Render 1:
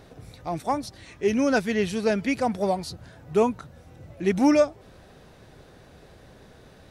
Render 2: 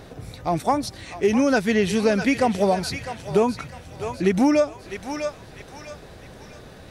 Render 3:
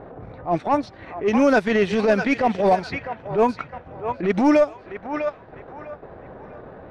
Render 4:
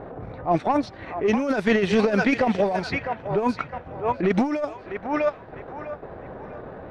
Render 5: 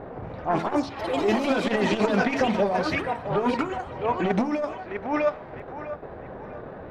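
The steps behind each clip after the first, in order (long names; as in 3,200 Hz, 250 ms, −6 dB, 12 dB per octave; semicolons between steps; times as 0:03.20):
feedback echo with a high-pass in the loop 652 ms, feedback 45%, high-pass 1,000 Hz, level −9.5 dB; downward compressor 6 to 1, threshold −22 dBFS, peak gain reduction 8 dB; level +7 dB
mid-hump overdrive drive 13 dB, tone 1,300 Hz, clips at −8 dBFS; transient designer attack −11 dB, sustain −7 dB; low-pass that shuts in the quiet parts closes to 970 Hz, open at −16.5 dBFS; level +3.5 dB
compressor whose output falls as the input rises −19 dBFS, ratio −0.5
hum removal 55.53 Hz, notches 29; delay with pitch and tempo change per echo 117 ms, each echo +4 semitones, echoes 3, each echo −6 dB; saturating transformer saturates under 440 Hz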